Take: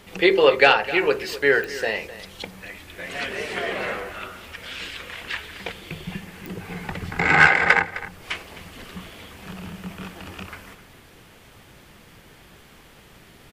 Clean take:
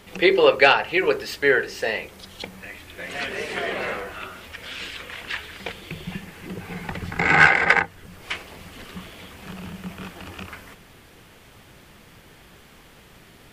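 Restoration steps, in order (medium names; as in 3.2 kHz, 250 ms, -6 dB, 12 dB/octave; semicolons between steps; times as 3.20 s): de-click; inverse comb 259 ms -15.5 dB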